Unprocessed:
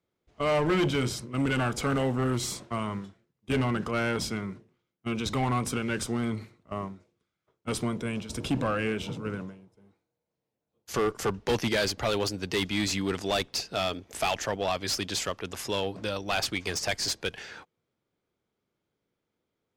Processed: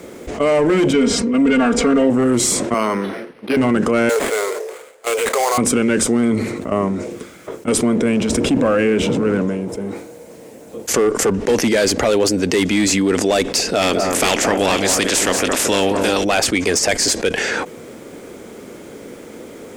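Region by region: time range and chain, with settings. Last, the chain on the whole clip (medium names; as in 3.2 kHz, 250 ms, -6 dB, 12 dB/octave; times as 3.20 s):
0.93–2.10 s: low-pass 5.2 kHz + comb 4.3 ms, depth 98%
2.74–3.57 s: frequency weighting A + decimation joined by straight lines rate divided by 6×
4.09–5.58 s: steep high-pass 420 Hz 72 dB/octave + distance through air 190 m + sample-rate reducer 5.6 kHz, jitter 20%
7.83–9.42 s: companding laws mixed up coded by mu + treble shelf 7.9 kHz -11 dB
13.81–16.23 s: spectral peaks clipped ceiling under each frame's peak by 15 dB + echo whose repeats swap between lows and highs 223 ms, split 1.9 kHz, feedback 57%, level -7 dB
whole clip: graphic EQ 125/250/500/2000/4000/8000 Hz -4/+9/+9/+5/-3/+10 dB; level flattener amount 70%; trim -1 dB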